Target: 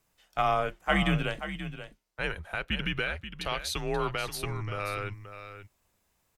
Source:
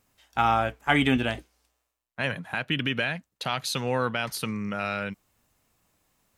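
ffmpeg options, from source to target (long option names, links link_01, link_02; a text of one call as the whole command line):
ffmpeg -i in.wav -filter_complex "[0:a]afreqshift=-95,asplit=2[link_01][link_02];[link_02]aecho=0:1:531:0.282[link_03];[link_01][link_03]amix=inputs=2:normalize=0,volume=-3.5dB" out.wav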